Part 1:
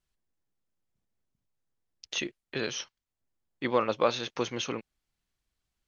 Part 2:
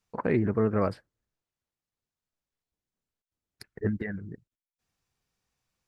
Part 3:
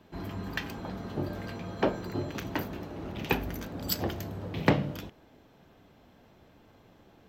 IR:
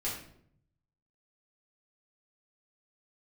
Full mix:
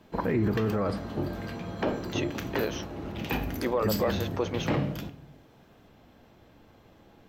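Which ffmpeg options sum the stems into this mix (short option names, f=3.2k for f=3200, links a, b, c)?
-filter_complex "[0:a]equalizer=f=570:t=o:w=2.7:g=13.5,volume=-7dB[a];[1:a]volume=3dB,asplit=2[b][c];[c]volume=-15dB[d];[2:a]volume=0dB,asplit=2[e][f];[f]volume=-11.5dB[g];[3:a]atrim=start_sample=2205[h];[d][g]amix=inputs=2:normalize=0[i];[i][h]afir=irnorm=-1:irlink=0[j];[a][b][e][j]amix=inputs=4:normalize=0,alimiter=limit=-18dB:level=0:latency=1:release=16"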